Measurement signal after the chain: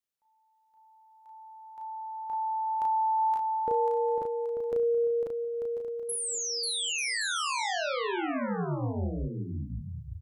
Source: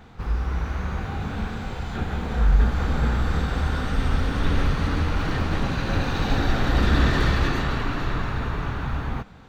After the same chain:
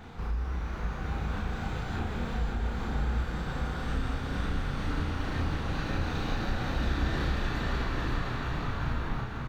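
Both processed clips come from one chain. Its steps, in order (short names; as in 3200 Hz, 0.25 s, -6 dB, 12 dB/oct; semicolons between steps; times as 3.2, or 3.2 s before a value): compressor 3:1, threshold -35 dBFS; doubler 34 ms -3 dB; bouncing-ball echo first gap 0.54 s, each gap 0.65×, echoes 5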